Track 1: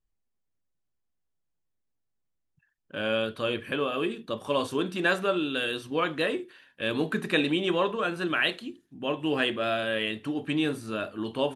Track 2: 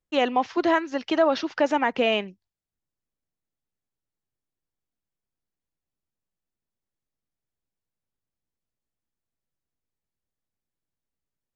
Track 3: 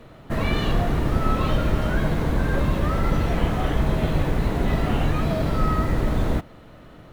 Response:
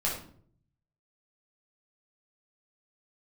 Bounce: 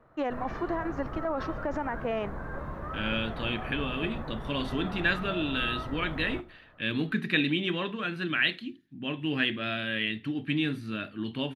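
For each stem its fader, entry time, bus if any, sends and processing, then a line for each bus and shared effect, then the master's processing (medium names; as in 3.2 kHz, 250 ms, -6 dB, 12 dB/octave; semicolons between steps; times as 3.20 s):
-6.0 dB, 0.00 s, no bus, no send, ten-band graphic EQ 125 Hz +9 dB, 250 Hz +7 dB, 500 Hz -6 dB, 1 kHz -4 dB, 2 kHz +9 dB, 4 kHz +6 dB, 8 kHz -11 dB
+0.5 dB, 0.05 s, bus A, no send, single-diode clipper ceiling -14.5 dBFS; tremolo saw down 2.5 Hz, depth 85%
-18.5 dB, 0.00 s, bus A, send -23.5 dB, peaking EQ 1.1 kHz +7 dB 2.4 oct
bus A: 0.0 dB, resonant high shelf 2.2 kHz -11 dB, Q 1.5; peak limiter -21.5 dBFS, peak gain reduction 12 dB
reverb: on, RT60 0.55 s, pre-delay 8 ms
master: none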